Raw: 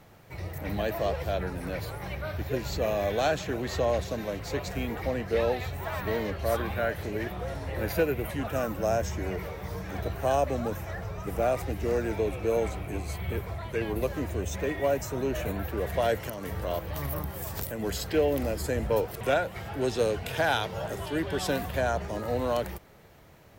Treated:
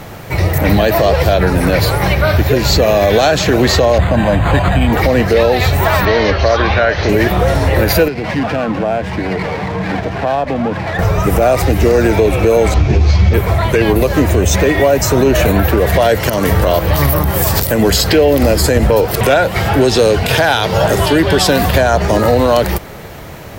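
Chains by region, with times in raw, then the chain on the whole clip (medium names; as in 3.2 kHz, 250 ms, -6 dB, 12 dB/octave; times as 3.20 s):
3.98–4.93 s: comb 1.2 ms, depth 69% + decimation joined by straight lines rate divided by 8×
6.05–7.09 s: steep low-pass 6.3 kHz 72 dB/octave + peaking EQ 180 Hz -7 dB 2.1 oct
8.08–10.99 s: compression 4:1, threshold -33 dBFS + cabinet simulation 150–3200 Hz, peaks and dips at 380 Hz -7 dB, 570 Hz -6 dB, 1.3 kHz -7 dB + sliding maximum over 5 samples
12.74–13.34 s: CVSD coder 32 kbps + bass shelf 190 Hz +10 dB + three-phase chorus
whole clip: dynamic bell 4.6 kHz, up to +5 dB, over -55 dBFS, Q 2.7; compression 2:1, threshold -32 dBFS; loudness maximiser +25 dB; trim -1 dB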